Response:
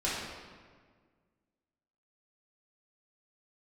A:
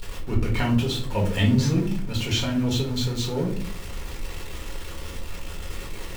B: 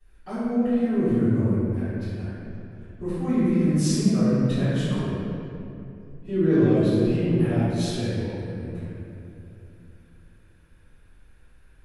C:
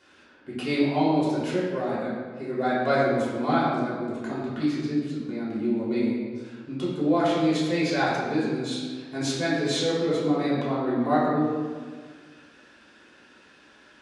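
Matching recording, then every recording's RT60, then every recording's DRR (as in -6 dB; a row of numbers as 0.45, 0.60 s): C; 0.50, 2.8, 1.7 s; -2.5, -19.5, -9.0 dB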